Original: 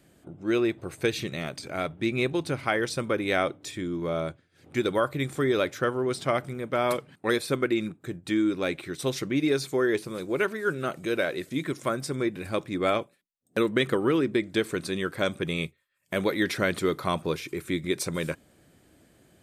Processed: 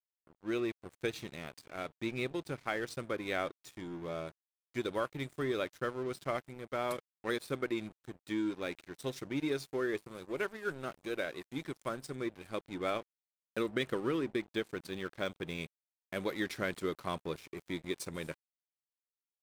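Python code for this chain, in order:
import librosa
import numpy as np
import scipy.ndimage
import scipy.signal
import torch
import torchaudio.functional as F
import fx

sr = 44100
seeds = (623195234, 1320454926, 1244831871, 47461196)

y = np.sign(x) * np.maximum(np.abs(x) - 10.0 ** (-39.0 / 20.0), 0.0)
y = fx.resample_linear(y, sr, factor=2, at=(14.41, 15.61))
y = y * 10.0 ** (-8.5 / 20.0)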